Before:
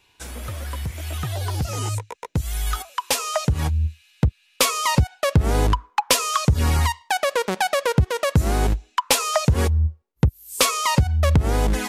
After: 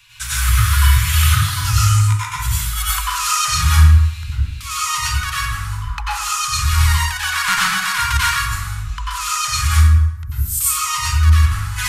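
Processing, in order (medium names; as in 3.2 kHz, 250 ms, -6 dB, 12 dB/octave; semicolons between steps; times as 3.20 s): elliptic band-stop 130–1200 Hz, stop band 50 dB; peaking EQ 75 Hz -14 dB 0.25 oct; compressor with a negative ratio -32 dBFS, ratio -1; plate-style reverb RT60 0.97 s, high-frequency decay 0.65×, pre-delay 80 ms, DRR -8 dB; trim +5 dB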